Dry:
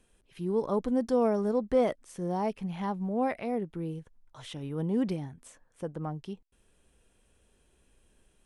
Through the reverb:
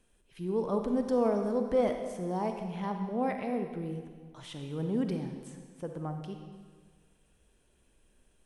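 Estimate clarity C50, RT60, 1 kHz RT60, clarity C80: 5.5 dB, 1.6 s, 1.6 s, 7.0 dB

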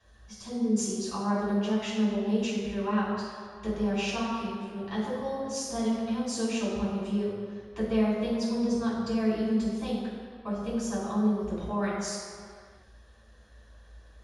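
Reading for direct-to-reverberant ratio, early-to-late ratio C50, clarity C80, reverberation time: -9.0 dB, -0.5 dB, 1.0 dB, no single decay rate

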